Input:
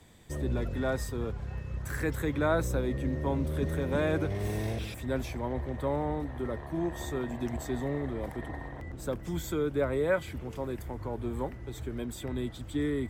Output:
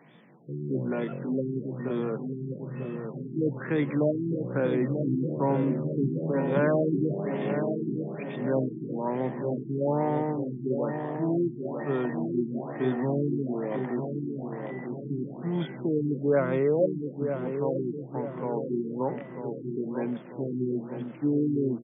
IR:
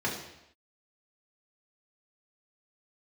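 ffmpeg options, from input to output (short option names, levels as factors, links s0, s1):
-filter_complex "[0:a]atempo=0.6,acontrast=56,afftfilt=real='re*between(b*sr/4096,120,6000)':imag='im*between(b*sr/4096,120,6000)':win_size=4096:overlap=0.75,asplit=2[s0][s1];[s1]adelay=944,lowpass=f=1000:p=1,volume=0.501,asplit=2[s2][s3];[s3]adelay=944,lowpass=f=1000:p=1,volume=0.54,asplit=2[s4][s5];[s5]adelay=944,lowpass=f=1000:p=1,volume=0.54,asplit=2[s6][s7];[s7]adelay=944,lowpass=f=1000:p=1,volume=0.54,asplit=2[s8][s9];[s9]adelay=944,lowpass=f=1000:p=1,volume=0.54,asplit=2[s10][s11];[s11]adelay=944,lowpass=f=1000:p=1,volume=0.54,asplit=2[s12][s13];[s13]adelay=944,lowpass=f=1000:p=1,volume=0.54[s14];[s2][s4][s6][s8][s10][s12][s14]amix=inputs=7:normalize=0[s15];[s0][s15]amix=inputs=2:normalize=0,afftfilt=real='re*lt(b*sr/1024,400*pow(3700/400,0.5+0.5*sin(2*PI*1.1*pts/sr)))':imag='im*lt(b*sr/1024,400*pow(3700/400,0.5+0.5*sin(2*PI*1.1*pts/sr)))':win_size=1024:overlap=0.75,volume=0.841"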